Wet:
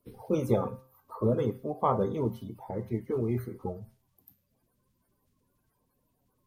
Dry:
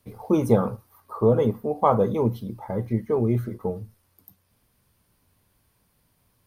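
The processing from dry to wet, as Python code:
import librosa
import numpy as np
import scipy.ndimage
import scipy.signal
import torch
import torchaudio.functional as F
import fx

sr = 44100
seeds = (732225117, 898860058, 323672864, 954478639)

y = fx.spec_quant(x, sr, step_db=30)
y = fx.comb_fb(y, sr, f0_hz=130.0, decay_s=0.45, harmonics='all', damping=0.0, mix_pct=60)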